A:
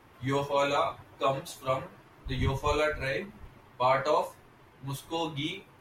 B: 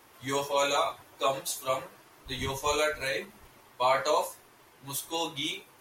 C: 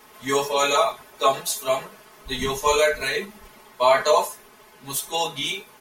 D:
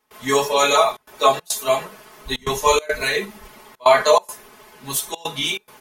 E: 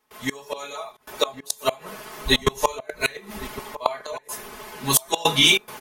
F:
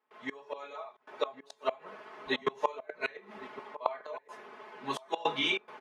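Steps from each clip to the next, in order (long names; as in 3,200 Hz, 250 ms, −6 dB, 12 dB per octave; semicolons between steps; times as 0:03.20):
bass and treble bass −10 dB, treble +12 dB
comb filter 4.7 ms, depth 91%; level +5 dB
gate pattern ".xxxxxxxx.xxx" 140 BPM −24 dB; level +4 dB
gate with flip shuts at −11 dBFS, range −26 dB; slap from a distant wall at 190 metres, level −15 dB; automatic gain control; level −1 dB
band-pass filter 300–2,200 Hz; level −8 dB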